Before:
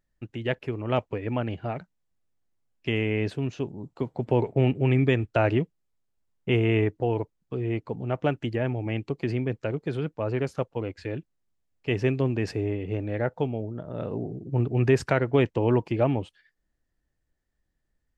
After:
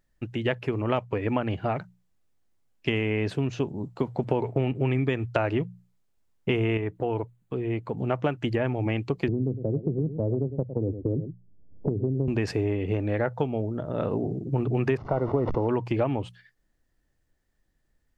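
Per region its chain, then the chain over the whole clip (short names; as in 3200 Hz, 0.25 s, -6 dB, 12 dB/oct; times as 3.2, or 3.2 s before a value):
6.77–7.98 bell 5300 Hz -8.5 dB 0.48 oct + compressor 1.5:1, threshold -37 dBFS
9.28–12.28 Gaussian blur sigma 18 samples + echo 0.107 s -13.5 dB + three-band squash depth 100%
14.97–15.69 delta modulation 32 kbps, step -35.5 dBFS + polynomial smoothing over 65 samples + sustainer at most 62 dB/s
whole clip: notches 60/120/180 Hz; dynamic EQ 1100 Hz, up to +4 dB, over -42 dBFS, Q 1.5; compressor, threshold -27 dBFS; gain +5.5 dB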